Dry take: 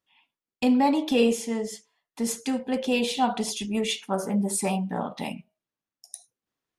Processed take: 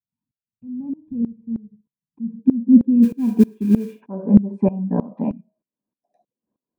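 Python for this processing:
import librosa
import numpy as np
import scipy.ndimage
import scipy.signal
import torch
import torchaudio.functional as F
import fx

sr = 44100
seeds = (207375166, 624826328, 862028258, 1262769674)

y = fx.filter_sweep_lowpass(x, sr, from_hz=110.0, to_hz=590.0, start_s=1.59, end_s=3.98, q=2.8)
y = fx.mod_noise(y, sr, seeds[0], snr_db=20, at=(3.02, 4.0), fade=0.02)
y = fx.small_body(y, sr, hz=(220.0, 1000.0, 1600.0, 2400.0), ring_ms=25, db=16)
y = fx.dynamic_eq(y, sr, hz=790.0, q=1.0, threshold_db=-26.0, ratio=4.0, max_db=-5)
y = fx.tremolo_decay(y, sr, direction='swelling', hz=3.2, depth_db=20)
y = F.gain(torch.from_numpy(y), 1.5).numpy()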